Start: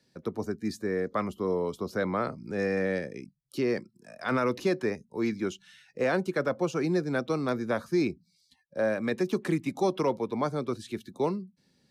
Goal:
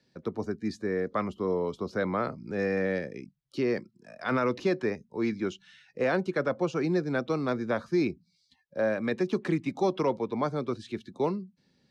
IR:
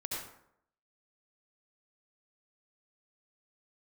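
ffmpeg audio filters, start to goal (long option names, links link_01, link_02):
-af "lowpass=5300"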